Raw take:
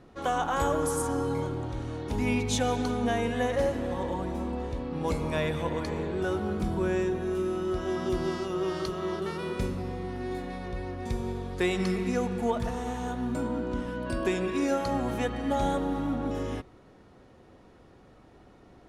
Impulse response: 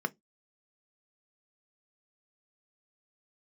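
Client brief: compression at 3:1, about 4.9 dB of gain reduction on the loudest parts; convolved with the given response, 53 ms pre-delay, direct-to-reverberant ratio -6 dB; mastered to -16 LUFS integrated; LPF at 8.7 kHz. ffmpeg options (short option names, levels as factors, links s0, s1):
-filter_complex "[0:a]lowpass=8700,acompressor=threshold=0.0355:ratio=3,asplit=2[s0][s1];[1:a]atrim=start_sample=2205,adelay=53[s2];[s1][s2]afir=irnorm=-1:irlink=0,volume=1.06[s3];[s0][s3]amix=inputs=2:normalize=0,volume=2.99"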